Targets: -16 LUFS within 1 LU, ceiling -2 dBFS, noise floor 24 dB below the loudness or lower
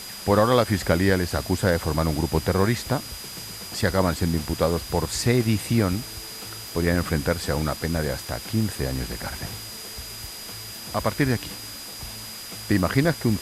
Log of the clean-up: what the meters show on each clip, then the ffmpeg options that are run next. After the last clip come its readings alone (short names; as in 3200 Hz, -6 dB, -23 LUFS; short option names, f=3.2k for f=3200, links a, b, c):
steady tone 4900 Hz; tone level -39 dBFS; noise floor -38 dBFS; noise floor target -49 dBFS; loudness -25.0 LUFS; peak -5.5 dBFS; loudness target -16.0 LUFS
-> -af "bandreject=f=4.9k:w=30"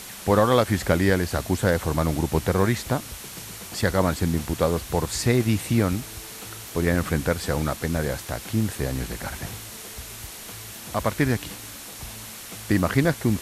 steady tone none; noise floor -39 dBFS; noise floor target -48 dBFS
-> -af "afftdn=nr=9:nf=-39"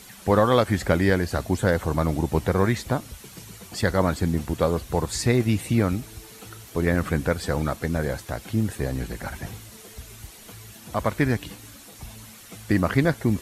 noise floor -46 dBFS; noise floor target -49 dBFS
-> -af "afftdn=nr=6:nf=-46"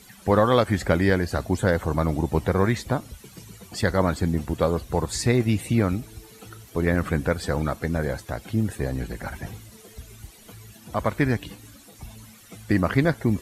noise floor -49 dBFS; loudness -24.5 LUFS; peak -6.0 dBFS; loudness target -16.0 LUFS
-> -af "volume=8.5dB,alimiter=limit=-2dB:level=0:latency=1"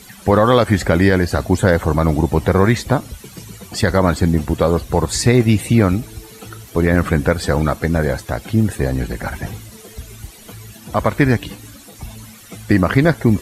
loudness -16.5 LUFS; peak -2.0 dBFS; noise floor -41 dBFS